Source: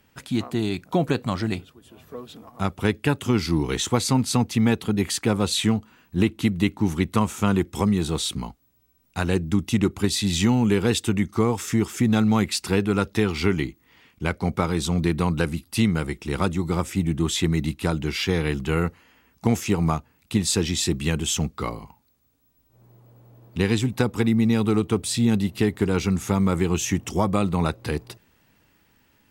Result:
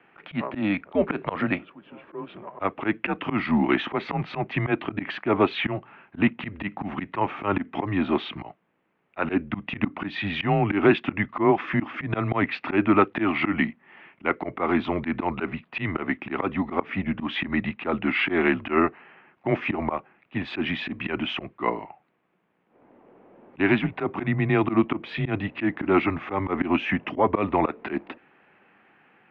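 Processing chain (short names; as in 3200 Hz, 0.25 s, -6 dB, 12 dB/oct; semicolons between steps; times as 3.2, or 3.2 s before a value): mistuned SSB -98 Hz 340–2700 Hz; auto swell 0.108 s; gain +8 dB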